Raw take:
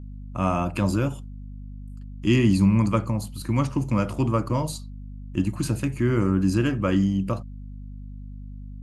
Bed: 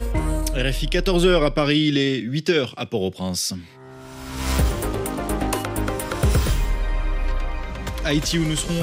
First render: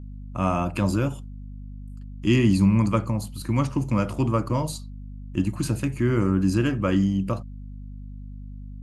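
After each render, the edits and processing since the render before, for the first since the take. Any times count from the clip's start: no audible change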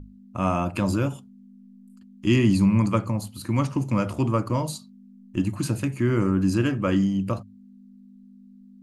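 hum notches 50/100/150 Hz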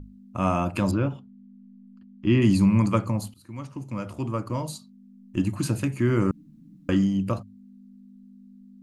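0.91–2.42 s: distance through air 280 m; 3.34–5.47 s: fade in, from -19.5 dB; 6.31–6.89 s: room tone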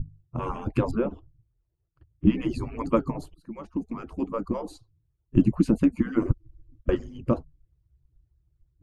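harmonic-percussive separation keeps percussive; tilt EQ -4.5 dB/octave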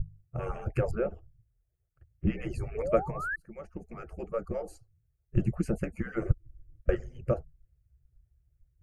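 2.75–3.36 s: painted sound rise 410–1800 Hz -32 dBFS; static phaser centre 1 kHz, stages 6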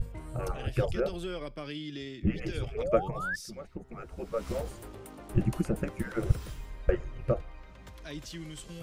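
add bed -20.5 dB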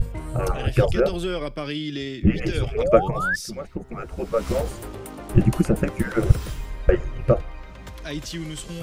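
trim +10 dB; peak limiter -1 dBFS, peak gain reduction 1.5 dB

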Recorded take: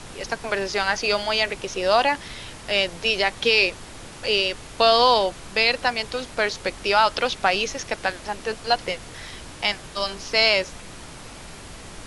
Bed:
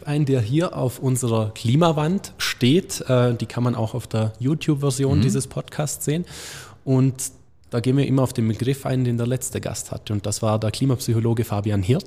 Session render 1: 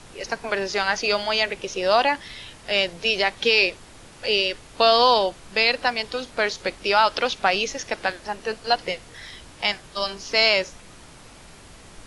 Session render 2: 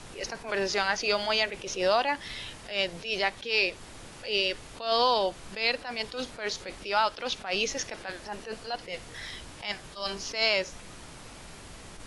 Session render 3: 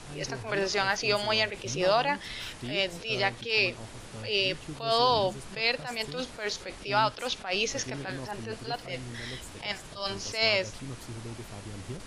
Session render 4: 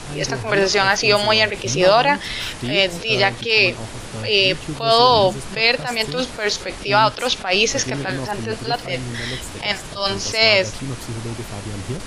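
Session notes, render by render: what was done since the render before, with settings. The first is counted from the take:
noise print and reduce 6 dB
compression 2.5:1, threshold -23 dBFS, peak gain reduction 7.5 dB; attacks held to a fixed rise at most 140 dB/s
add bed -21 dB
trim +12 dB; peak limiter -3 dBFS, peak gain reduction 3 dB

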